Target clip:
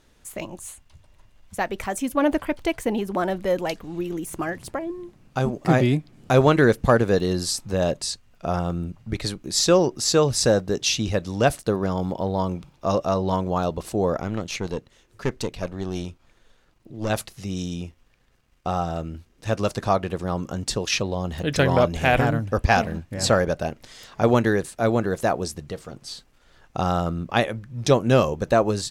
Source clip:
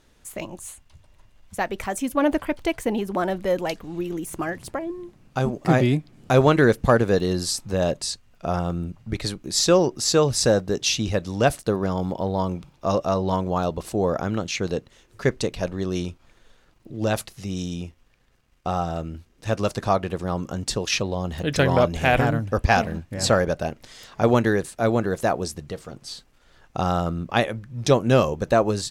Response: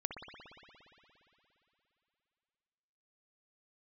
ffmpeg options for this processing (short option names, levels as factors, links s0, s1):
-filter_complex "[0:a]asettb=1/sr,asplit=3[s0][s1][s2];[s0]atrim=end=14.164[s3];[s1]atrim=start=14.16:end=17.1,asetpts=PTS-STARTPTS,afade=t=in:d=0.004:c=qsin,afade=t=out:st=2.936:d=0.004:c=qsin,aeval=exprs='(tanh(6.31*val(0)+0.6)-tanh(0.6))/6.31':c=same[s4];[s2]atrim=start=17.096[s5];[s3][s4]acrossfade=d=0.004:c1=hsin:c2=qsin[s6];[s6][s5]acrossfade=d=0.004:c1=qsin:c2=hsin"